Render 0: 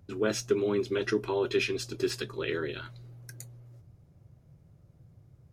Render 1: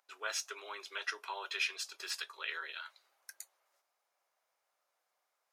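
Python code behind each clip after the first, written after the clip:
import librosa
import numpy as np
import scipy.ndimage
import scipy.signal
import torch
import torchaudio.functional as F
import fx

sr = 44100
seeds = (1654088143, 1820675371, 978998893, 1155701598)

y = scipy.signal.sosfilt(scipy.signal.butter(4, 820.0, 'highpass', fs=sr, output='sos'), x)
y = y * librosa.db_to_amplitude(-2.0)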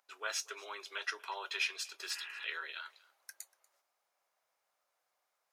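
y = fx.spec_repair(x, sr, seeds[0], start_s=2.18, length_s=0.24, low_hz=290.0, high_hz=3200.0, source='before')
y = y + 10.0 ** (-23.5 / 20.0) * np.pad(y, (int(239 * sr / 1000.0), 0))[:len(y)]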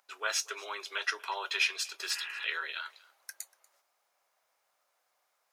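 y = fx.low_shelf(x, sr, hz=280.0, db=-4.5)
y = y * librosa.db_to_amplitude(6.0)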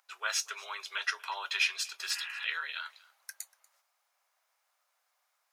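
y = scipy.signal.sosfilt(scipy.signal.butter(2, 780.0, 'highpass', fs=sr, output='sos'), x)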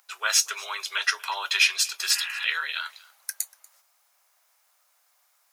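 y = fx.high_shelf(x, sr, hz=5600.0, db=9.5)
y = y * librosa.db_to_amplitude(6.5)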